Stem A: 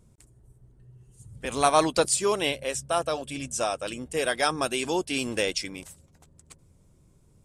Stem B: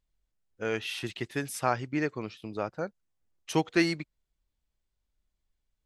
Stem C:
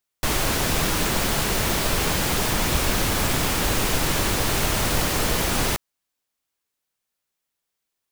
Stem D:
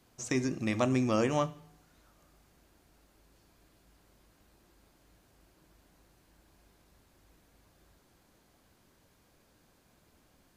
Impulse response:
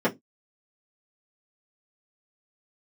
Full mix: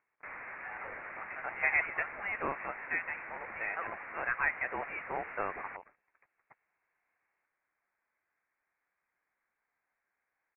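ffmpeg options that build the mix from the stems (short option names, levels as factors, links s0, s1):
-filter_complex "[0:a]volume=0.841[s0];[1:a]acompressor=mode=upward:threshold=0.00708:ratio=2.5,volume=0.398[s1];[2:a]lowpass=f=1500:p=1,volume=0.299[s2];[3:a]acontrast=53,adelay=500,volume=0.178[s3];[s0][s1][s2][s3]amix=inputs=4:normalize=0,highpass=f=1100:w=0.5412,highpass=f=1100:w=1.3066,lowpass=f=2700:t=q:w=0.5098,lowpass=f=2700:t=q:w=0.6013,lowpass=f=2700:t=q:w=0.9,lowpass=f=2700:t=q:w=2.563,afreqshift=-3200"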